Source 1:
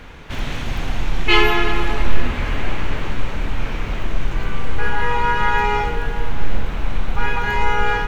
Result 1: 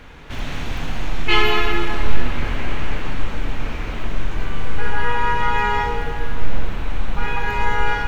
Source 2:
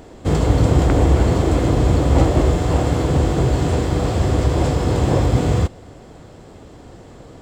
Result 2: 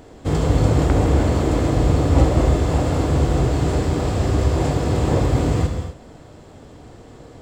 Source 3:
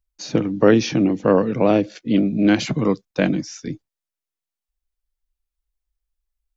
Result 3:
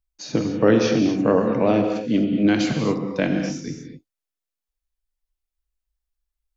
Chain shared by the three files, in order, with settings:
reverb whose tail is shaped and stops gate 280 ms flat, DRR 3.5 dB
level −3 dB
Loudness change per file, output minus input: −1.5, −1.5, −1.5 LU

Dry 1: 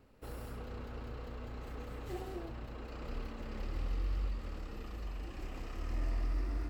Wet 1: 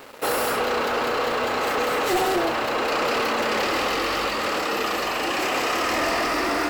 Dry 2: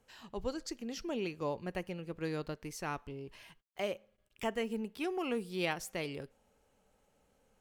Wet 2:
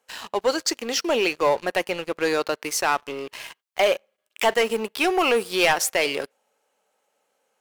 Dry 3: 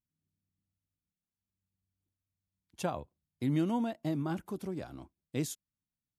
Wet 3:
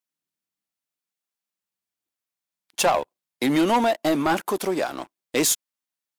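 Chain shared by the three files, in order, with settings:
high-pass filter 530 Hz 12 dB per octave
leveller curve on the samples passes 3
loudness normalisation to −23 LKFS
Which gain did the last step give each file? +19.5, +9.5, +11.5 decibels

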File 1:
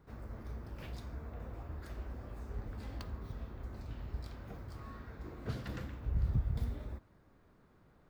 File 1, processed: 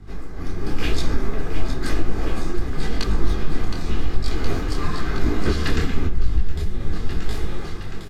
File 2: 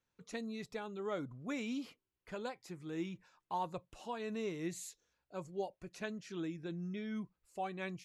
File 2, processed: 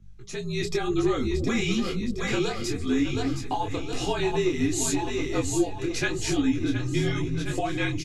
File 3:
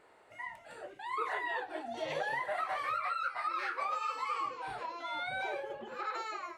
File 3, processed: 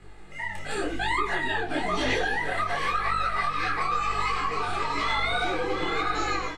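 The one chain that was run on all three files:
comb filter 2.4 ms, depth 47%
on a send: echo with a time of its own for lows and highs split 440 Hz, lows 271 ms, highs 717 ms, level −8 dB
on the sum: downward compressor 16 to 1, threshold −41 dBFS
high-shelf EQ 5,100 Hz +4.5 dB
mains hum 50 Hz, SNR 12 dB
low-pass filter 8,800 Hz 12 dB per octave
frequency shifter −54 Hz
automatic gain control gain up to 12 dB
parametric band 790 Hz −6.5 dB 1.6 octaves
micro pitch shift up and down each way 33 cents
loudness normalisation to −27 LKFS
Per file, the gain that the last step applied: +19.0, +13.0, +12.5 decibels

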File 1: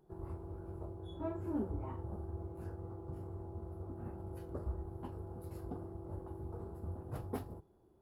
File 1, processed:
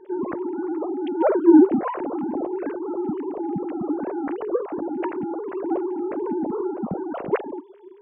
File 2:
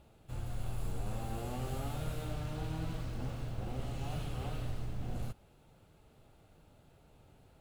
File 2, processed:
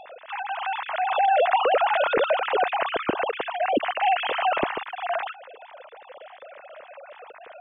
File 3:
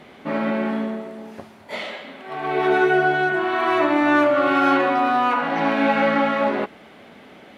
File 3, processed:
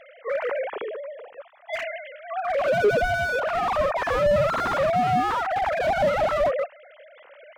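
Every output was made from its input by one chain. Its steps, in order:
three sine waves on the formant tracks
slew-rate limiting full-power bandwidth 73 Hz
loudness normalisation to −24 LKFS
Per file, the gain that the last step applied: +19.5, +12.5, +0.5 decibels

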